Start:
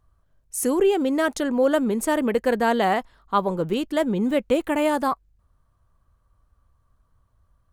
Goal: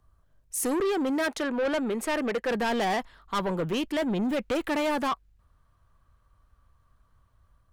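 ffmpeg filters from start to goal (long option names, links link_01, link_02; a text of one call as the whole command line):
ffmpeg -i in.wav -filter_complex "[0:a]asettb=1/sr,asplit=3[link_01][link_02][link_03];[link_01]atrim=end=1.284[link_04];[link_02]atrim=start=1.28:end=2.51,asetpts=PTS-STARTPTS,afade=type=in:duration=0.004:curve=qsin,afade=type=out:start_time=1.226:duration=0.004:curve=qsin,bass=frequency=250:gain=-9,treble=frequency=4000:gain=-7[link_05];[link_03]atrim=start=2.506[link_06];[link_04][link_05]acrossfade=duration=0.004:curve1=hsin:curve2=qsin[link_07];[link_07][link_06]acrossfade=duration=0.004:curve1=qsin:curve2=hsin,acrossover=split=110|1300|4200[link_08][link_09][link_10][link_11];[link_10]dynaudnorm=framelen=420:gausssize=3:maxgain=6dB[link_12];[link_08][link_09][link_12][link_11]amix=inputs=4:normalize=0,asoftclip=type=tanh:threshold=-23.5dB" out.wav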